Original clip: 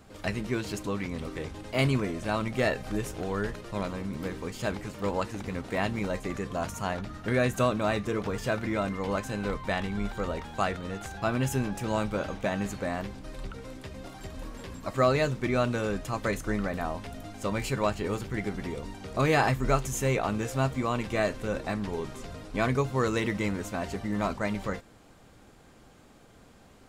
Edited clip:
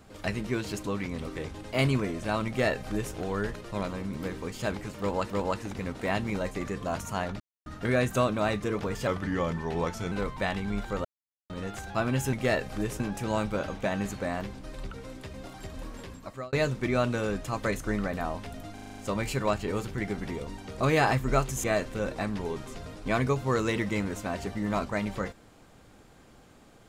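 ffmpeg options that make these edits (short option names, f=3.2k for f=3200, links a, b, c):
-filter_complex "[0:a]asplit=17[a][b][c][d][e][f][g][h][i][j][k][l][m][n][o][p][q];[a]atrim=end=5.302[r];[b]atrim=start=4.988:end=7.09,asetpts=PTS-STARTPTS,afade=t=out:st=2.098:d=0.004:c=hsin,apad=pad_dur=0.26[s];[c]atrim=start=7.09:end=8.504,asetpts=PTS-STARTPTS,afade=t=in:d=0.004:c=hsin[t];[d]atrim=start=8.5:end=9.39,asetpts=PTS-STARTPTS,asetrate=37485,aresample=44100,atrim=end_sample=46175,asetpts=PTS-STARTPTS[u];[e]atrim=start=9.386:end=10.32,asetpts=PTS-STARTPTS,afade=t=out:st=0.93:d=0.004:c=hsin[v];[f]atrim=start=10.32:end=10.77,asetpts=PTS-STARTPTS,volume=0[w];[g]atrim=start=10.77:end=11.602,asetpts=PTS-STARTPTS,afade=t=in:d=0.004:c=hsin[x];[h]atrim=start=2.468:end=3.142[y];[i]atrim=start=11.598:end=15.13,asetpts=PTS-STARTPTS,afade=t=out:st=2.982:d=0.55[z];[j]atrim=start=15.13:end=17.382,asetpts=PTS-STARTPTS,afade=t=in:d=0.004:c=hsin[aa];[k]atrim=start=17.338:end=17.382[ab];[l]atrim=start=17.338:end=17.382[ac];[m]atrim=start=17.338:end=17.382[ad];[n]atrim=start=17.338:end=17.382[ae];[o]atrim=start=17.338:end=17.382[af];[p]atrim=start=17.338:end=20.002[ag];[q]atrim=start=21.118[ah];[s][t]concat=n=2:v=0:a=1[ai];[r][ai]acrossfade=d=0.004:c1=hsin:c2=hsin[aj];[aj][u]acrossfade=d=0.004:c1=hsin:c2=hsin[ak];[v][w][x]concat=n=3:v=0:a=1[al];[ak][al]acrossfade=d=0.004:c1=hsin:c2=hsin[am];[am][y]acrossfade=d=0.004:c1=hsin:c2=hsin[an];[z][aa]concat=n=2:v=0:a=1[ao];[an][ao]acrossfade=d=0.004:c1=hsin:c2=hsin[ap];[ap][ab]acrossfade=d=0.004:c1=hsin:c2=hsin[aq];[aq][ac]acrossfade=d=0.004:c1=hsin:c2=hsin[ar];[ar][ad]acrossfade=d=0.004:c1=hsin:c2=hsin[as];[as][ae]acrossfade=d=0.004:c1=hsin:c2=hsin[at];[at][af]acrossfade=d=0.004:c1=hsin:c2=hsin[au];[au][ag]acrossfade=d=0.004:c1=hsin:c2=hsin[av];[av][ah]acrossfade=d=0.004:c1=hsin:c2=hsin"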